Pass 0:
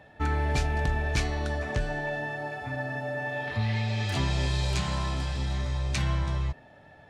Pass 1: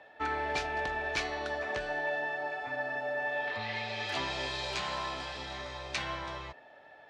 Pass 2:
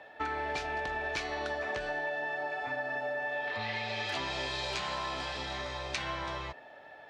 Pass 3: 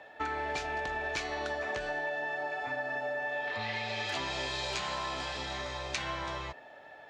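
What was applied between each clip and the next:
three-band isolator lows -21 dB, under 350 Hz, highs -15 dB, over 5.7 kHz
compression, threshold -35 dBFS, peak gain reduction 7.5 dB; trim +3.5 dB
peaking EQ 7 kHz +5 dB 0.38 oct

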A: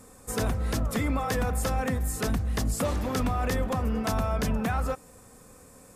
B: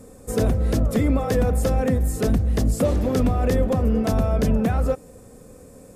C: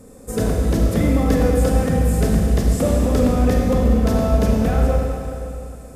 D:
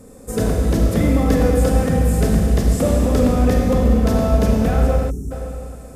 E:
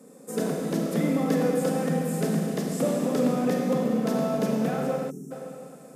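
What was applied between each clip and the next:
resonant low shelf 720 Hz +7.5 dB, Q 1.5
Schroeder reverb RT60 2.7 s, combs from 33 ms, DRR -1 dB
time-frequency box 5.10–5.31 s, 440–5400 Hz -30 dB; trim +1 dB
elliptic high-pass 150 Hz; trim -6 dB

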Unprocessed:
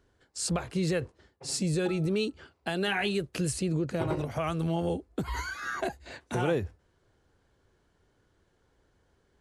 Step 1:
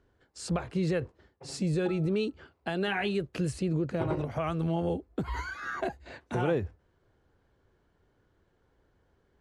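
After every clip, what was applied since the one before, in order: low-pass 2.4 kHz 6 dB/octave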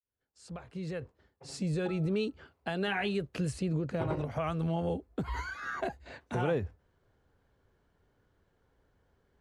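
fade-in on the opening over 1.97 s; peaking EQ 340 Hz -5.5 dB 0.23 oct; trim -1.5 dB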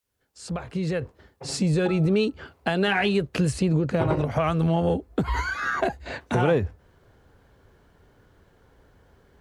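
in parallel at +3 dB: compression, threshold -41 dBFS, peak gain reduction 14.5 dB; on the sum: Chebyshev shaper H 7 -37 dB, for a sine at -15 dBFS; trim +7 dB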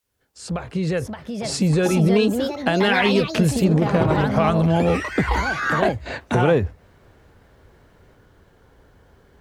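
ever faster or slower copies 688 ms, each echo +4 st, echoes 2, each echo -6 dB; trim +4 dB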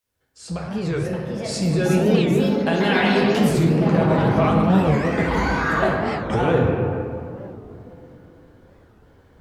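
reverberation RT60 3.2 s, pre-delay 6 ms, DRR -2.5 dB; warped record 45 rpm, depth 250 cents; trim -4.5 dB

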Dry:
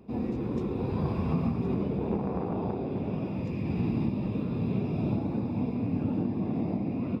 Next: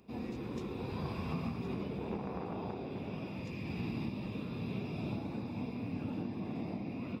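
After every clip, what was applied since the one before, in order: tilt shelf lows -7 dB, about 1.4 kHz; trim -3 dB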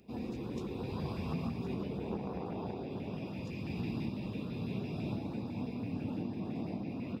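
LFO notch saw up 6 Hz 980–2400 Hz; trim +1 dB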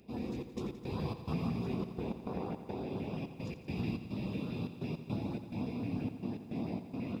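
trance gate "xxx.x.xx.x" 106 bpm; bit-crushed delay 86 ms, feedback 80%, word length 11-bit, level -12.5 dB; trim +1 dB

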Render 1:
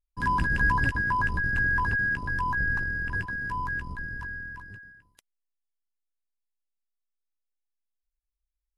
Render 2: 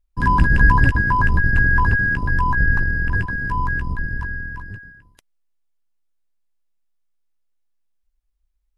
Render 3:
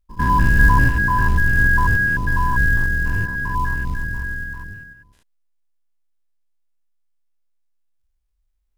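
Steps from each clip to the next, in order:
tilt EQ -1.5 dB/octave; trim +7.5 dB
spectrogram pixelated in time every 100 ms; in parallel at -6 dB: short-mantissa float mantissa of 2-bit; on the sum: trim -2 dB

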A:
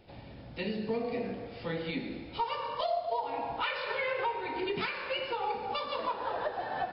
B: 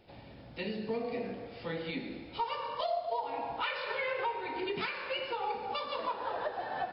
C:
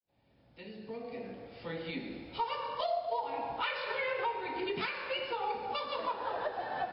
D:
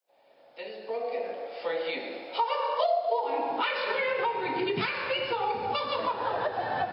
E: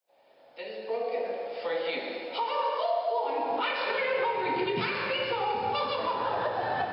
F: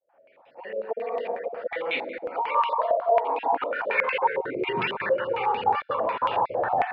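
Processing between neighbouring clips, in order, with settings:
bass shelf 160 Hz -4.5 dB; trim -1.5 dB
fade-in on the opening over 2.28 s
high-pass sweep 580 Hz -> 97 Hz, 2.74–4.96 s; compression 2:1, threshold -35 dBFS, peak gain reduction 6.5 dB; trim +8 dB
peak limiter -21.5 dBFS, peak gain reduction 6 dB; reverberation RT60 2.2 s, pre-delay 7 ms, DRR 5.5 dB
random holes in the spectrogram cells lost 25%; step-sequenced low-pass 11 Hz 570–2800 Hz

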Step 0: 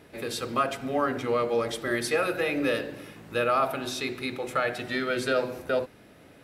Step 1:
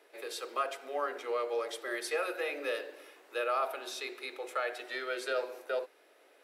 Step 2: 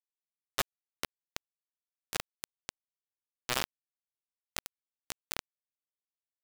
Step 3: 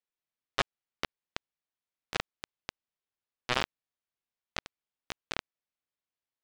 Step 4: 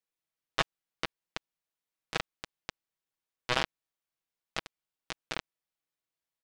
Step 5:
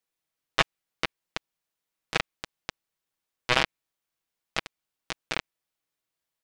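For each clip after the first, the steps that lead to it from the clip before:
steep high-pass 370 Hz 36 dB/octave; trim -7 dB
bit crusher 4-bit; trim +3 dB
low-pass 4 kHz 12 dB/octave; trim +4 dB
comb 6.2 ms, depth 40%
dynamic bell 2.3 kHz, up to +4 dB, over -46 dBFS, Q 2.4; trim +5 dB

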